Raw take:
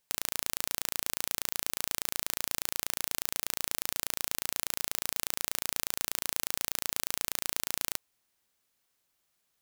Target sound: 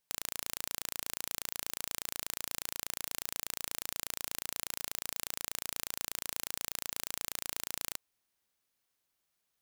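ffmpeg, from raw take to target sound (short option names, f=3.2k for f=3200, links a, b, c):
-af "bandreject=f=7.4k:w=24,volume=-5dB"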